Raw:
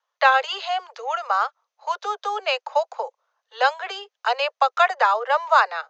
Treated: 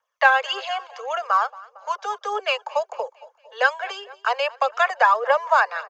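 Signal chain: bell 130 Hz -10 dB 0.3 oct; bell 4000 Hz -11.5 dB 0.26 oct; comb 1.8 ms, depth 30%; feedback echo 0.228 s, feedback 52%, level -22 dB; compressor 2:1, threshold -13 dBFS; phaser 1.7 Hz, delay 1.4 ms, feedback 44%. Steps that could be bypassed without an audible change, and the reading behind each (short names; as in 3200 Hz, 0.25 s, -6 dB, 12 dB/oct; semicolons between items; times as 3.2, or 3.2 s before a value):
bell 130 Hz: input band starts at 360 Hz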